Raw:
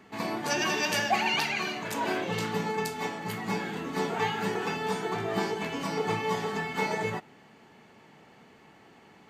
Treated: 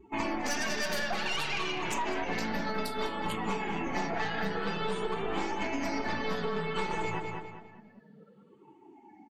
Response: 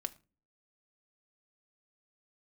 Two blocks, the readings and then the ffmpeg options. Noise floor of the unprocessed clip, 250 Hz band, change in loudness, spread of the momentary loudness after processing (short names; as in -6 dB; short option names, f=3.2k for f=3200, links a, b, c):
-56 dBFS, -1.5 dB, -3.0 dB, 3 LU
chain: -filter_complex "[0:a]afftfilt=real='re*pow(10,8/40*sin(2*PI*(0.68*log(max(b,1)*sr/1024/100)/log(2)-(-0.57)*(pts-256)/sr)))':imag='im*pow(10,8/40*sin(2*PI*(0.68*log(max(b,1)*sr/1024/100)/log(2)-(-0.57)*(pts-256)/sr)))':win_size=1024:overlap=0.75,aeval=exprs='0.237*(cos(1*acos(clip(val(0)/0.237,-1,1)))-cos(1*PI/2))+0.0075*(cos(5*acos(clip(val(0)/0.237,-1,1)))-cos(5*PI/2))+0.0422*(cos(6*acos(clip(val(0)/0.237,-1,1)))-cos(6*PI/2))':c=same,aeval=exprs='val(0)+0.00178*(sin(2*PI*60*n/s)+sin(2*PI*2*60*n/s)/2+sin(2*PI*3*60*n/s)/3+sin(2*PI*4*60*n/s)/4+sin(2*PI*5*60*n/s)/5)':c=same,bandreject=f=60:t=h:w=6,bandreject=f=120:t=h:w=6,bandreject=f=180:t=h:w=6,bandreject=f=240:t=h:w=6,afftdn=nr=24:nf=-45,flanger=delay=3.1:depth=3.1:regen=-21:speed=0.34:shape=sinusoidal,aeval=exprs='0.2*sin(PI/2*1.41*val(0)/0.2)':c=same,asplit=2[a][b];[b]adelay=201,lowpass=f=4.5k:p=1,volume=-10dB,asplit=2[c][d];[d]adelay=201,lowpass=f=4.5k:p=1,volume=0.38,asplit=2[e][f];[f]adelay=201,lowpass=f=4.5k:p=1,volume=0.38,asplit=2[g][h];[h]adelay=201,lowpass=f=4.5k:p=1,volume=0.38[i];[c][e][g][i]amix=inputs=4:normalize=0[j];[a][j]amix=inputs=2:normalize=0,acompressor=threshold=-27dB:ratio=6,volume=-1dB"